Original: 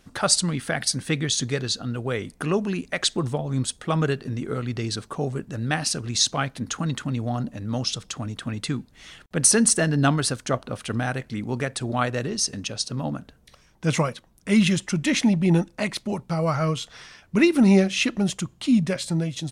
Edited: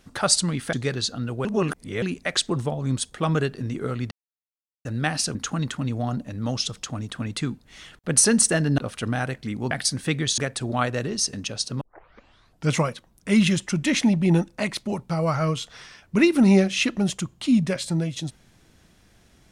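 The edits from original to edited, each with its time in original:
0.73–1.40 s: move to 11.58 s
2.12–2.69 s: reverse
4.78–5.52 s: mute
6.02–6.62 s: delete
10.05–10.65 s: delete
13.01 s: tape start 0.91 s

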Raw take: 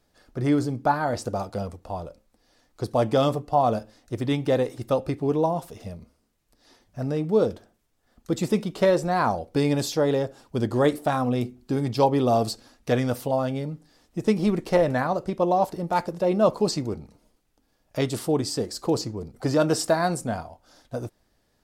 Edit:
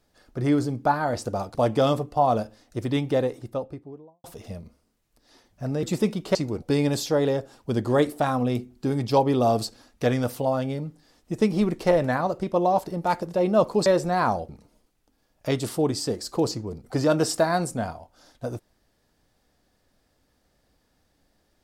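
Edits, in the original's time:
1.55–2.91 s: delete
4.28–5.60 s: studio fade out
7.19–8.33 s: delete
8.85–9.48 s: swap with 16.72–16.99 s

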